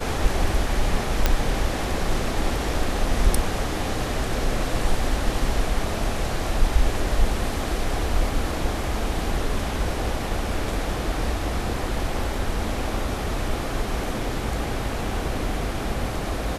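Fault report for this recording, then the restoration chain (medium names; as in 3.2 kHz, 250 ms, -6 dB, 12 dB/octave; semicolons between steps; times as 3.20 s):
1.26 s: pop -4 dBFS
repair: de-click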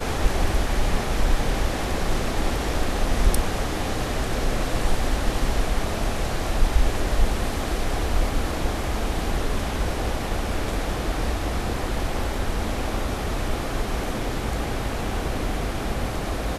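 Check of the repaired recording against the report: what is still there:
nothing left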